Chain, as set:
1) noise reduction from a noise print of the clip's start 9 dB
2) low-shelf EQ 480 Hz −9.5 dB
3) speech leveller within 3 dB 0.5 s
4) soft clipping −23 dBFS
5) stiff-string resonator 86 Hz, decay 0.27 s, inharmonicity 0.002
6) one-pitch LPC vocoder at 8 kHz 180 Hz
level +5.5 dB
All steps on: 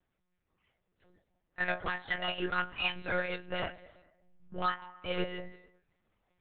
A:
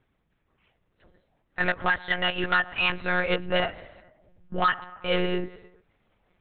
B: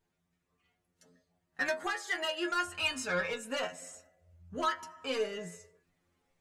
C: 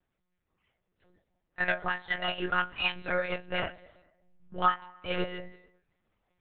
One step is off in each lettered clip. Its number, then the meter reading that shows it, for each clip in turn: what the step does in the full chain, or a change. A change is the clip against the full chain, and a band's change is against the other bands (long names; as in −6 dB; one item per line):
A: 5, change in momentary loudness spread −3 LU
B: 6, 125 Hz band −6.5 dB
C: 4, distortion level −11 dB